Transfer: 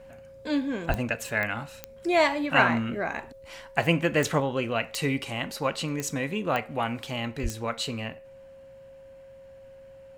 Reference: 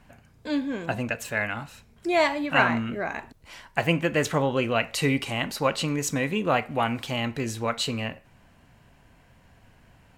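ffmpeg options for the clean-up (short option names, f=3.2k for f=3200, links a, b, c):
-filter_complex "[0:a]adeclick=t=4,bandreject=f=540:w=30,asplit=3[a][b][c];[a]afade=t=out:st=0.88:d=0.02[d];[b]highpass=f=140:w=0.5412,highpass=f=140:w=1.3066,afade=t=in:st=0.88:d=0.02,afade=t=out:st=1:d=0.02[e];[c]afade=t=in:st=1:d=0.02[f];[d][e][f]amix=inputs=3:normalize=0,asplit=3[g][h][i];[g]afade=t=out:st=7.42:d=0.02[j];[h]highpass=f=140:w=0.5412,highpass=f=140:w=1.3066,afade=t=in:st=7.42:d=0.02,afade=t=out:st=7.54:d=0.02[k];[i]afade=t=in:st=7.54:d=0.02[l];[j][k][l]amix=inputs=3:normalize=0,asetnsamples=n=441:p=0,asendcmd='4.4 volume volume 3.5dB',volume=0dB"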